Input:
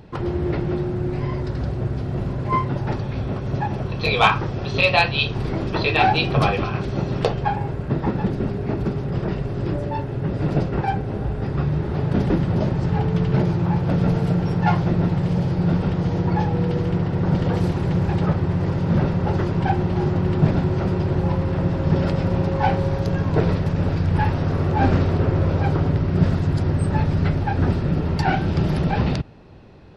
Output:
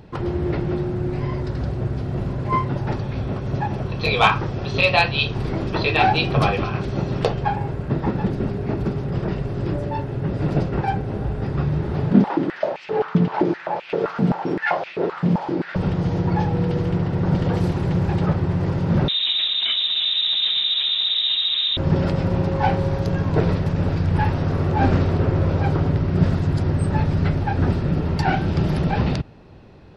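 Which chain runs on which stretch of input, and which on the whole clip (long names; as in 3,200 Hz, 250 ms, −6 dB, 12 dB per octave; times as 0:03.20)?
0:12.11–0:15.76: high-frequency loss of the air 90 metres + high-pass on a step sequencer 7.7 Hz 210–2,500 Hz
0:19.08–0:21.77: hard clipping −19 dBFS + double-tracking delay 21 ms −12 dB + voice inversion scrambler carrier 3,800 Hz
whole clip: no processing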